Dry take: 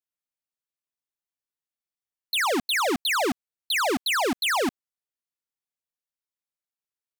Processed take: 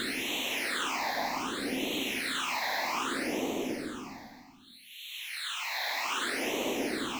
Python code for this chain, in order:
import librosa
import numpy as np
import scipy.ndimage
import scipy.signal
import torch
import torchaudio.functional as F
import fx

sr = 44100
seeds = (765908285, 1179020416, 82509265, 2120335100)

y = fx.paulstretch(x, sr, seeds[0], factor=5.4, window_s=0.5, from_s=2.65)
y = fx.phaser_stages(y, sr, stages=8, low_hz=380.0, high_hz=1500.0, hz=0.64, feedback_pct=25)
y = y * 10.0 ** (-5.0 / 20.0)